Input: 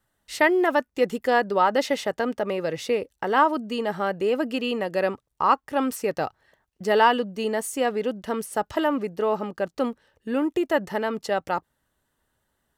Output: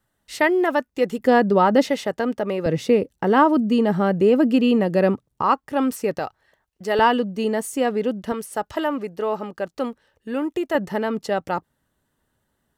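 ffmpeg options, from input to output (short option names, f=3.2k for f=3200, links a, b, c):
-af "asetnsamples=n=441:p=0,asendcmd='1.19 equalizer g 14;1.89 equalizer g 5;2.66 equalizer g 14;5.42 equalizer g 5.5;6.19 equalizer g -2.5;6.99 equalizer g 6.5;8.32 equalizer g -1;10.75 equalizer g 6',equalizer=f=180:t=o:w=2.4:g=3"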